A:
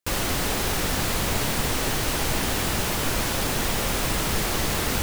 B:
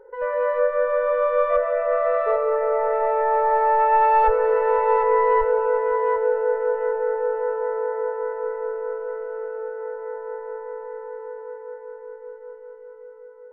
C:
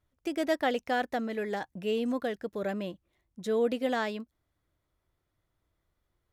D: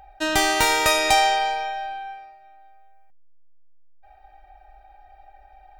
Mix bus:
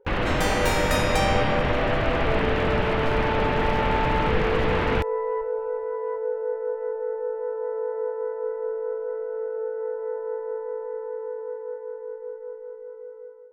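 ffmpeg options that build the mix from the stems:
ffmpeg -i stem1.wav -i stem2.wav -i stem3.wav -i stem4.wav -filter_complex "[0:a]lowpass=frequency=2700:width=0.5412,lowpass=frequency=2700:width=1.3066,aeval=exprs='clip(val(0),-1,0.0794)':channel_layout=same,volume=3dB[link_01];[1:a]equalizer=frequency=280:width=0.59:gain=12.5,dynaudnorm=framelen=390:gausssize=3:maxgain=11.5dB,volume=-17dB[link_02];[2:a]volume=-14.5dB[link_03];[3:a]adelay=50,volume=-9dB[link_04];[link_01][link_02][link_03][link_04]amix=inputs=4:normalize=0" out.wav

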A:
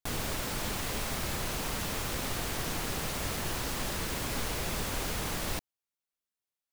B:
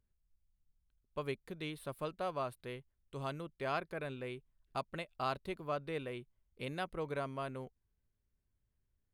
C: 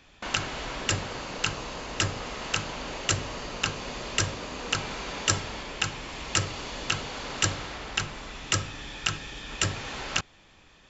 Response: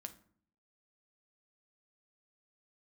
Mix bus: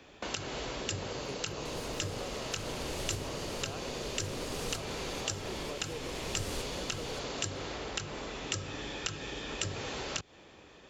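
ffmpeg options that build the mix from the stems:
-filter_complex "[0:a]lowpass=10000,alimiter=level_in=2dB:limit=-24dB:level=0:latency=1,volume=-2dB,adelay=1600,volume=-0.5dB[link_01];[1:a]highshelf=frequency=9000:gain=11.5,volume=-7.5dB,asplit=2[link_02][link_03];[2:a]highpass=48,acompressor=threshold=-29dB:ratio=6,volume=-1dB[link_04];[link_03]apad=whole_len=367004[link_05];[link_01][link_05]sidechaincompress=threshold=-52dB:ratio=8:attack=16:release=661[link_06];[link_06][link_02][link_04]amix=inputs=3:normalize=0,equalizer=frequency=430:width=0.94:gain=10,acrossover=split=160|3000[link_07][link_08][link_09];[link_08]acompressor=threshold=-38dB:ratio=6[link_10];[link_07][link_10][link_09]amix=inputs=3:normalize=0"

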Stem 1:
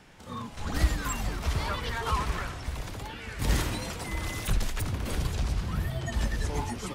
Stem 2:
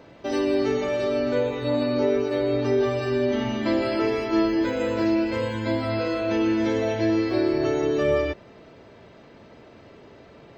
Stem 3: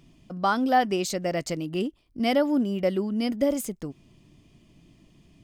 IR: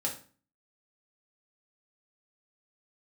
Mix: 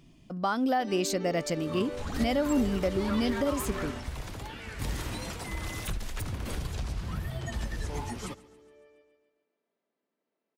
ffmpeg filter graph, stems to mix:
-filter_complex "[0:a]acompressor=threshold=-27dB:ratio=6,adelay=1400,volume=-2dB,asplit=2[link_01][link_02];[link_02]volume=-21dB[link_03];[1:a]highpass=frequency=200:width=0.5412,highpass=frequency=200:width=1.3066,adelay=550,volume=-15.5dB,asplit=2[link_04][link_05];[link_05]volume=-22.5dB[link_06];[2:a]volume=-1dB,asplit=2[link_07][link_08];[link_08]apad=whole_len=490522[link_09];[link_04][link_09]sidechaingate=range=-33dB:threshold=-47dB:ratio=16:detection=peak[link_10];[link_01][link_07]amix=inputs=2:normalize=0,alimiter=limit=-18dB:level=0:latency=1:release=196,volume=0dB[link_11];[link_03][link_06]amix=inputs=2:normalize=0,aecho=0:1:139|278|417|556|695|834|973|1112:1|0.52|0.27|0.141|0.0731|0.038|0.0198|0.0103[link_12];[link_10][link_11][link_12]amix=inputs=3:normalize=0"

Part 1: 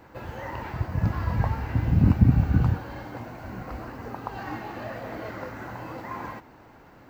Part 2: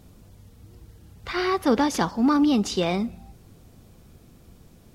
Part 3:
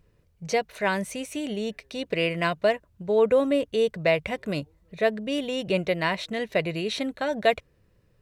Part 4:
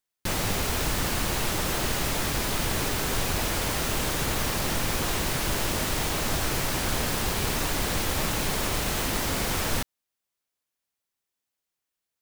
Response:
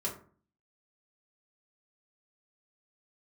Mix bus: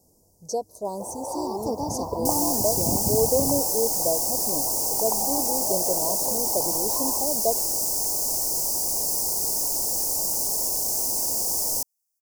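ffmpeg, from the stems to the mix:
-filter_complex "[0:a]equalizer=frequency=810:width=0.59:gain=9.5,acrusher=bits=8:mix=0:aa=0.000001,adelay=850,volume=-2dB[link_01];[1:a]volume=-5.5dB[link_02];[2:a]equalizer=frequency=260:width=1.5:gain=6.5,volume=-3dB[link_03];[3:a]highshelf=frequency=2000:gain=7,adelay=2000,volume=-5dB[link_04];[link_01][link_02][link_03][link_04]amix=inputs=4:normalize=0,asuperstop=centerf=2200:order=12:qfactor=0.54,bass=frequency=250:gain=-12,treble=frequency=4000:gain=7"

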